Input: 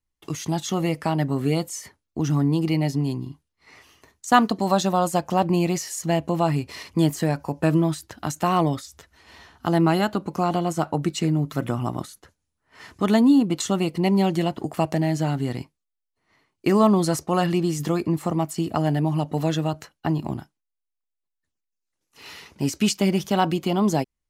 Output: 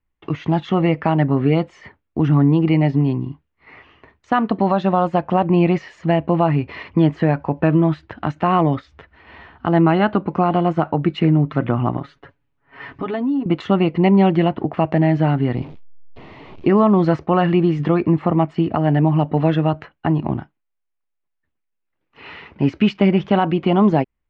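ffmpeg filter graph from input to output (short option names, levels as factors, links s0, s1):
-filter_complex "[0:a]asettb=1/sr,asplit=3[s0][s1][s2];[s0]atrim=end=11.974[s3];[s1]atrim=start=11.97:end=13.46,asetpts=PTS-STARTPTS,afade=t=in:d=0.004:c=qsin,afade=t=out:st=1.486:d=0.004:c=qsin,aecho=1:1:7.2:0.8,atrim=end_sample=65709,acompressor=threshold=0.0224:ratio=2.5:attack=3.2:release=140:knee=1:detection=peak[s4];[s2]atrim=start=13.456[s5];[s3][s4]acrossfade=d=0.004:c1=hsin:c2=qsin[s6];[s6][s5]acrossfade=d=0.004:c1=qsin:c2=hsin,asettb=1/sr,asplit=3[s7][s8][s9];[s7]atrim=end=15.554[s10];[s8]atrim=start=15.55:end=16.69,asetpts=PTS-STARTPTS,afade=t=in:d=0.004:c=qsin,afade=t=out:st=1.136:d=0.004:c=qsin,aeval=exprs='val(0)+0.5*0.0158*sgn(val(0))':c=same,equalizer=f=1600:t=o:w=1.1:g=-14[s11];[s9]atrim=start=16.686[s12];[s10][s11]acrossfade=d=0.004:c1=hsin:c2=qsin[s13];[s13][s12]acrossfade=d=0.004:c1=qsin:c2=hsin,lowpass=f=2700:w=0.5412,lowpass=f=2700:w=1.3066,alimiter=limit=0.224:level=0:latency=1:release=215,volume=2.24"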